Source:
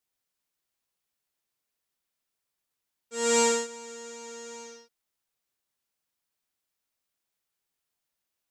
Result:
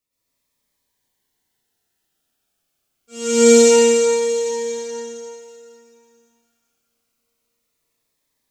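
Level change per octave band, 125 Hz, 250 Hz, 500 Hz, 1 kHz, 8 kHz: can't be measured, +18.0 dB, +17.0 dB, +5.5 dB, +10.5 dB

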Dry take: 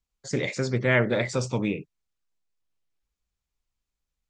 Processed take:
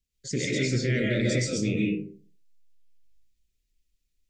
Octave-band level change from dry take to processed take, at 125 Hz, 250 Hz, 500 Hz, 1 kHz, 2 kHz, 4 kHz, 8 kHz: +1.0 dB, +2.5 dB, −3.0 dB, below −15 dB, −3.5 dB, +3.0 dB, +5.0 dB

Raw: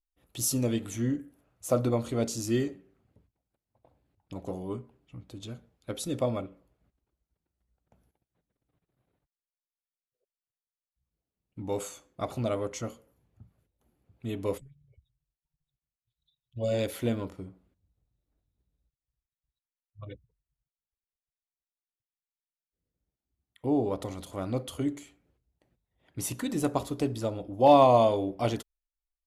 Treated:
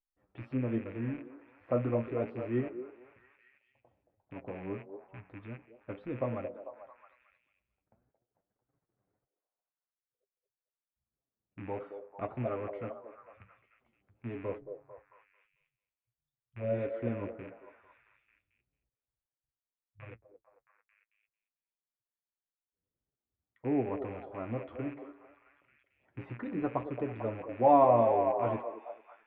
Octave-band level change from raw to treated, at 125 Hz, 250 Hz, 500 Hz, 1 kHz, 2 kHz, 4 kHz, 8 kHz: −5.0 dB, −5.0 dB, −3.5 dB, −2.5 dB, −3.0 dB, below −20 dB, below −40 dB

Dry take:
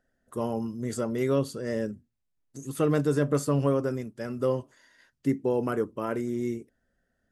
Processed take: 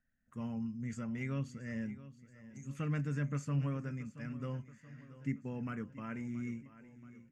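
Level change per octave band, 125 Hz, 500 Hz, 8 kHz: −5.5, −21.5, −15.0 decibels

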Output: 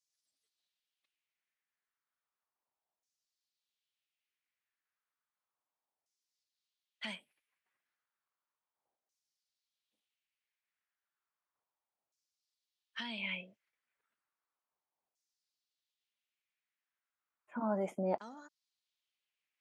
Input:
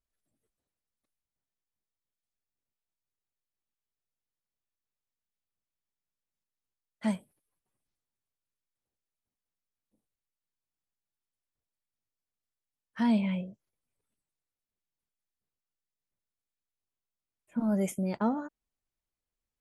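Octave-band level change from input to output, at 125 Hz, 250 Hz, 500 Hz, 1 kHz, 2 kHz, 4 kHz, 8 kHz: −12.0 dB, −13.5 dB, −2.5 dB, −5.0 dB, +1.5 dB, +4.5 dB, can't be measured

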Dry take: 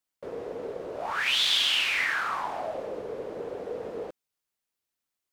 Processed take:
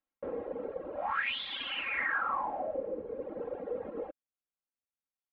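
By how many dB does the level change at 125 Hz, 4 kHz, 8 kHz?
−6.0 dB, −14.5 dB, below −40 dB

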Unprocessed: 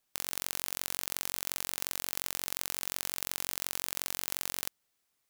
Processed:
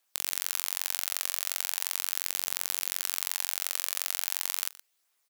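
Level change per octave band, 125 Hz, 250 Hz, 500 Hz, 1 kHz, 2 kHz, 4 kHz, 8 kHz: below −15 dB, can't be measured, −2.0 dB, +1.5 dB, +3.5 dB, +4.0 dB, +4.5 dB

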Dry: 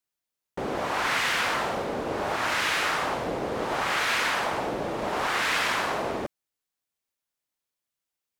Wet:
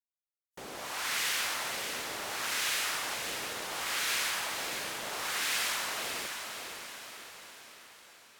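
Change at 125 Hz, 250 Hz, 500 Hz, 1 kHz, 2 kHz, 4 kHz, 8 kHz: −15.5, −15.0, −14.0, −11.0, −7.0, −2.0, +3.5 decibels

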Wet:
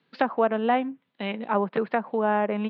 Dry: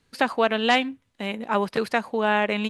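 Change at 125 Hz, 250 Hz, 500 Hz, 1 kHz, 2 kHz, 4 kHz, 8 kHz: −0.5 dB, −0.5 dB, −0.5 dB, −1.0 dB, −7.5 dB, −13.5 dB, below −35 dB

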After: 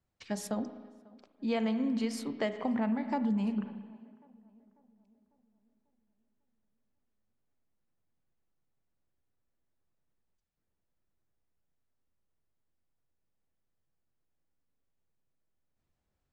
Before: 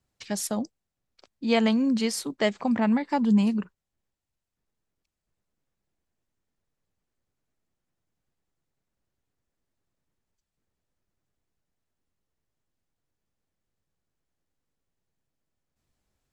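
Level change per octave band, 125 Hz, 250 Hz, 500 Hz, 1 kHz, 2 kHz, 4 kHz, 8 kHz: can't be measured, −7.5 dB, −7.0 dB, −7.0 dB, −9.5 dB, −12.0 dB, below −10 dB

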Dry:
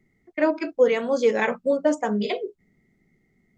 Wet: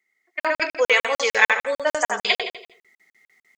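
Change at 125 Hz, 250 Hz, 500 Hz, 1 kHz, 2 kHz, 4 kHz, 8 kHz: can't be measured, −14.5 dB, −3.0 dB, +5.0 dB, +11.5 dB, +13.0 dB, +10.5 dB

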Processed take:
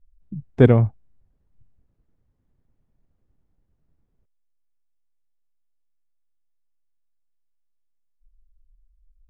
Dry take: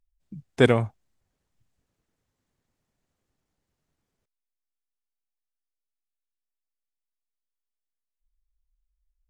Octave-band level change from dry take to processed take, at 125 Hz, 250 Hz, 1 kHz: +9.5, +6.0, −0.5 decibels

